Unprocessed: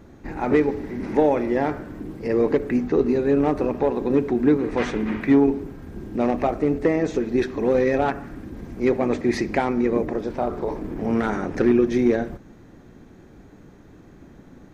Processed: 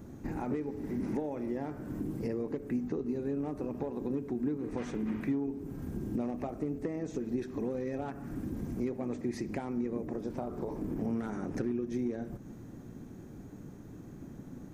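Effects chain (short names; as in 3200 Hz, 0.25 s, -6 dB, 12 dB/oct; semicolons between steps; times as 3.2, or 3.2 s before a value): high shelf 4100 Hz +10.5 dB; compressor 6:1, threshold -31 dBFS, peak gain reduction 17.5 dB; graphic EQ 125/250/2000/4000 Hz +7/+5/-4/-6 dB; gain -5 dB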